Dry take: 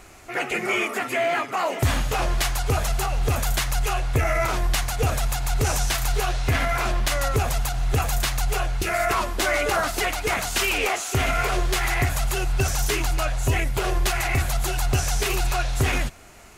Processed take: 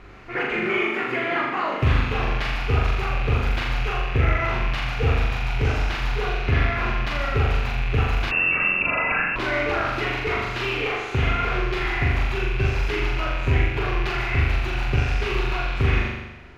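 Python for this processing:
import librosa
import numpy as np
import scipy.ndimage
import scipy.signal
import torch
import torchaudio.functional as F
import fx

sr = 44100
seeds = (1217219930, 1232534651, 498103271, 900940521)

y = fx.rattle_buzz(x, sr, strikes_db=-31.0, level_db=-17.0)
y = fx.peak_eq(y, sr, hz=690.0, db=-7.5, octaves=0.59)
y = fx.rider(y, sr, range_db=3, speed_s=0.5)
y = fx.air_absorb(y, sr, metres=310.0)
y = fx.room_flutter(y, sr, wall_m=7.0, rt60_s=1.0)
y = fx.freq_invert(y, sr, carrier_hz=2700, at=(8.31, 9.36))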